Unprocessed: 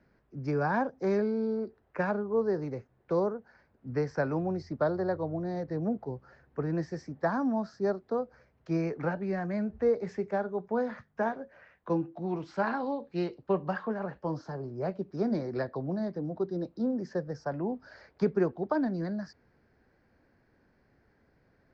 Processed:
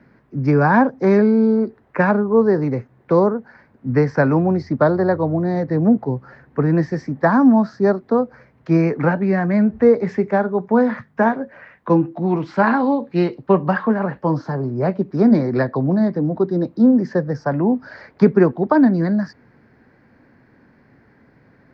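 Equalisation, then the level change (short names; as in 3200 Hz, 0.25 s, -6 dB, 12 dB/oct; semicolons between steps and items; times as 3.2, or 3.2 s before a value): ten-band EQ 125 Hz +10 dB, 250 Hz +11 dB, 500 Hz +4 dB, 1000 Hz +8 dB, 2000 Hz +9 dB, 4000 Hz +4 dB; +4.0 dB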